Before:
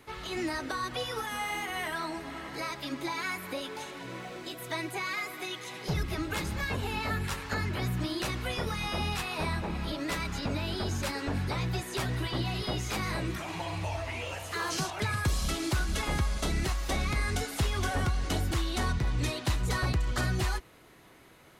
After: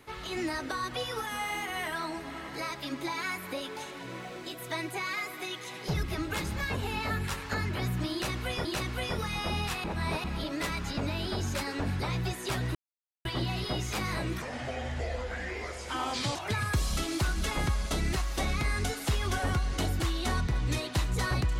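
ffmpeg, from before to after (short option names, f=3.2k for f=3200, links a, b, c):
-filter_complex "[0:a]asplit=7[a][b][c][d][e][f][g];[a]atrim=end=8.652[h];[b]atrim=start=8.128:end=9.322[i];[c]atrim=start=9.318:end=9.722,asetpts=PTS-STARTPTS,areverse[j];[d]atrim=start=9.718:end=12.23,asetpts=PTS-STARTPTS,afade=t=out:st=2.508:d=0.004:c=hsin,apad=pad_dur=0.5[k];[e]atrim=start=12.23:end=13.404,asetpts=PTS-STARTPTS,afade=t=in:d=0.004:c=hsin[l];[f]atrim=start=13.4:end=14.87,asetpts=PTS-STARTPTS,asetrate=33516,aresample=44100[m];[g]atrim=start=14.866[n];[h][i]acrossfade=d=0.004:c1=hsin:c2=hsin[o];[o][j]acrossfade=d=0.004:c1=hsin:c2=hsin[p];[k][l]concat=n=2:v=0:a=1[q];[p][q]acrossfade=d=0.004:c1=hsin:c2=hsin[r];[r][m]acrossfade=d=0.004:c1=hsin:c2=hsin[s];[s][n]acrossfade=d=0.004:c1=hsin:c2=hsin"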